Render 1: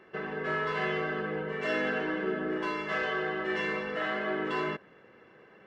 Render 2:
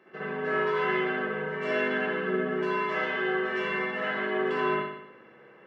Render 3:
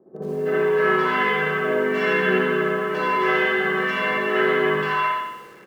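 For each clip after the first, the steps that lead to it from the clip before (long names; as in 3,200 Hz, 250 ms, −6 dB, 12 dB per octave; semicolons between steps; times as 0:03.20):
high-pass filter 130 Hz 12 dB per octave; convolution reverb, pre-delay 59 ms, DRR −6.5 dB; level −4.5 dB
multiband delay without the direct sound lows, highs 320 ms, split 670 Hz; feedback echo at a low word length 85 ms, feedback 35%, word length 9 bits, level −8 dB; level +8 dB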